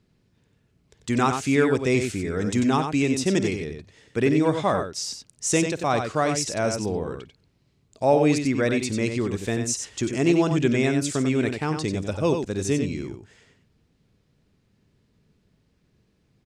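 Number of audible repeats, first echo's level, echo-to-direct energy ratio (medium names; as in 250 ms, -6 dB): 2, -19.5 dB, -6.5 dB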